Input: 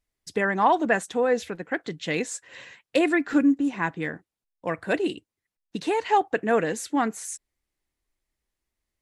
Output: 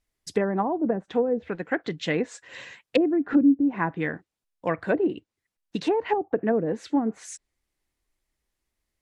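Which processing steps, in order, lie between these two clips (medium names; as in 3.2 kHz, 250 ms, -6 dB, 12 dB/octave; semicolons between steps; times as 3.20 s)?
low-pass that closes with the level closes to 390 Hz, closed at -18.5 dBFS; trim +2.5 dB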